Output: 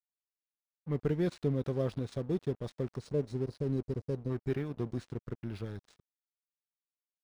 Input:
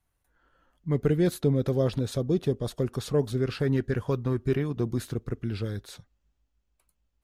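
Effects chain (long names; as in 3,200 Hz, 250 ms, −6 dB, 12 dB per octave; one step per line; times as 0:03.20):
time-frequency box erased 0:02.98–0:04.30, 630–3,800 Hz
dead-zone distortion −42 dBFS
linearly interpolated sample-rate reduction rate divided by 3×
level −6.5 dB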